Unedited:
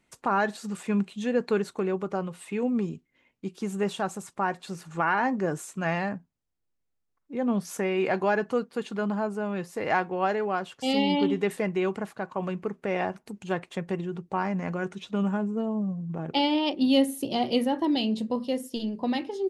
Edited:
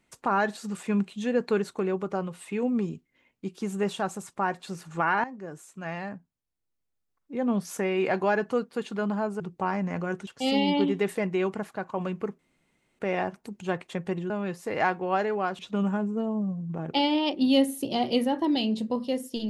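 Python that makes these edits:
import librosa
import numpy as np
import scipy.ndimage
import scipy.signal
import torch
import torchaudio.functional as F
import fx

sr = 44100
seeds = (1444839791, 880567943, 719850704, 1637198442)

y = fx.edit(x, sr, fx.fade_in_from(start_s=5.24, length_s=2.1, floor_db=-15.0),
    fx.swap(start_s=9.4, length_s=1.29, other_s=14.12, other_length_s=0.87),
    fx.insert_room_tone(at_s=12.81, length_s=0.6), tone=tone)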